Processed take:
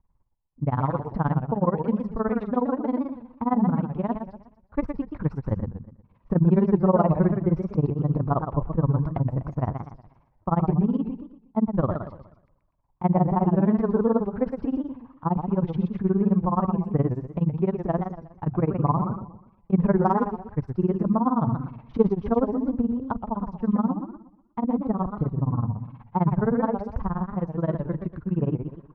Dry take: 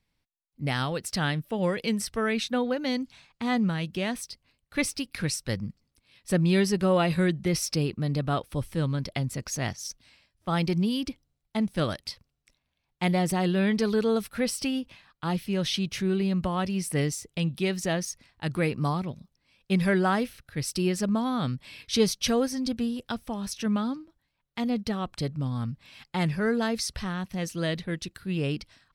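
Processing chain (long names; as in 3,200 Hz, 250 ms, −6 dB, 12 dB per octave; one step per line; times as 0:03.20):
low-pass with resonance 1,000 Hz, resonance Q 4.5
spectral tilt −3 dB per octave
de-essing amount 100%
amplitude tremolo 19 Hz, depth 96%
feedback echo with a swinging delay time 121 ms, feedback 35%, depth 207 cents, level −7 dB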